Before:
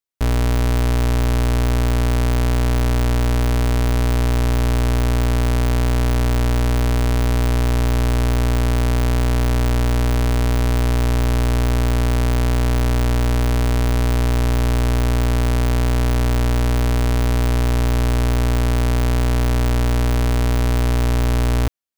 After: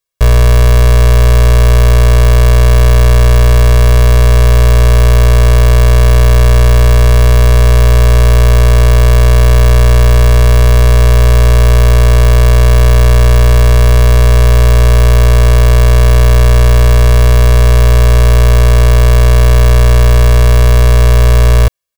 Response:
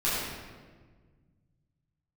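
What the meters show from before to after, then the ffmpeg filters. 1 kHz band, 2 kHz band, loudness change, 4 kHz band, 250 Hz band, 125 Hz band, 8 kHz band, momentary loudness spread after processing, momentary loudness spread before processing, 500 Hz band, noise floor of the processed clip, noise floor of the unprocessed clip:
+8.5 dB, +10.0 dB, +11.5 dB, +10.0 dB, +0.5 dB, +11.5 dB, +10.0 dB, 0 LU, 0 LU, +11.5 dB, −5 dBFS, −16 dBFS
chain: -af "aecho=1:1:1.8:0.97,volume=7dB"

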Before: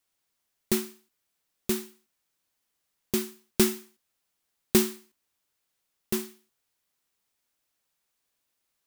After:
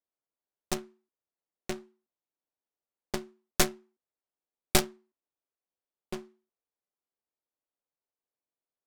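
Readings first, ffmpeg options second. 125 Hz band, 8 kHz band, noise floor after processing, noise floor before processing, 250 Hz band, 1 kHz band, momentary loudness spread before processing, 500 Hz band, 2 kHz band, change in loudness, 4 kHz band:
−2.5 dB, −1.5 dB, below −85 dBFS, −80 dBFS, −9.0 dB, +5.5 dB, 18 LU, −5.5 dB, +1.5 dB, −4.5 dB, 0.0 dB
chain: -af "bass=frequency=250:gain=-14,treble=frequency=4000:gain=10,adynamicsmooth=sensitivity=2:basefreq=750,aeval=exprs='0.531*(cos(1*acos(clip(val(0)/0.531,-1,1)))-cos(1*PI/2))+0.106*(cos(3*acos(clip(val(0)/0.531,-1,1)))-cos(3*PI/2))+0.133*(cos(4*acos(clip(val(0)/0.531,-1,1)))-cos(4*PI/2))+0.0299*(cos(5*acos(clip(val(0)/0.531,-1,1)))-cos(5*PI/2))+0.0596*(cos(8*acos(clip(val(0)/0.531,-1,1)))-cos(8*PI/2))':channel_layout=same"

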